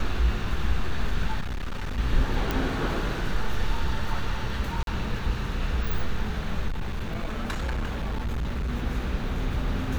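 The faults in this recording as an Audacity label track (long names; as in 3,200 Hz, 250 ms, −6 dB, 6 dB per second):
1.400000	1.990000	clipping −27 dBFS
2.510000	2.510000	click
4.830000	4.870000	drop-out 42 ms
6.680000	8.700000	clipping −25 dBFS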